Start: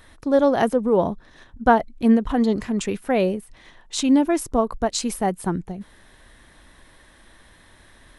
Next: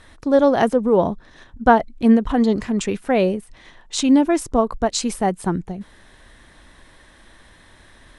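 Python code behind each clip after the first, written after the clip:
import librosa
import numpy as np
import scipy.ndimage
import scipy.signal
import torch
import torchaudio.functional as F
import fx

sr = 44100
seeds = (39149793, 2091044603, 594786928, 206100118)

y = scipy.signal.sosfilt(scipy.signal.butter(4, 9800.0, 'lowpass', fs=sr, output='sos'), x)
y = y * librosa.db_to_amplitude(2.5)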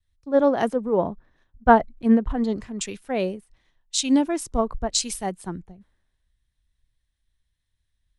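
y = fx.vibrato(x, sr, rate_hz=0.45, depth_cents=6.5)
y = fx.band_widen(y, sr, depth_pct=100)
y = y * librosa.db_to_amplitude(-7.5)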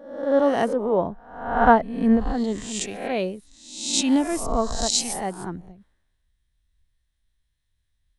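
y = fx.spec_swells(x, sr, rise_s=0.74)
y = y * librosa.db_to_amplitude(-1.5)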